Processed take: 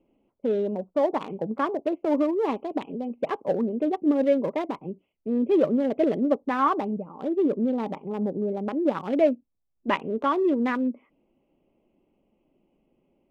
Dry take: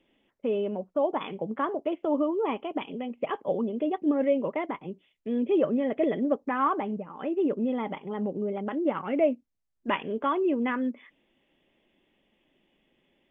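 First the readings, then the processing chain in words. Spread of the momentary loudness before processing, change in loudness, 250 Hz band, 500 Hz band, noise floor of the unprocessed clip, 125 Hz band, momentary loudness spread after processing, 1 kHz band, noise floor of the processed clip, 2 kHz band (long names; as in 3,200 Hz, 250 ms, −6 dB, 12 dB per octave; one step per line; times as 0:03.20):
8 LU, +3.0 dB, +3.0 dB, +3.0 dB, −74 dBFS, +3.5 dB, 9 LU, +2.5 dB, −74 dBFS, +1.0 dB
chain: adaptive Wiener filter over 25 samples
level +3.5 dB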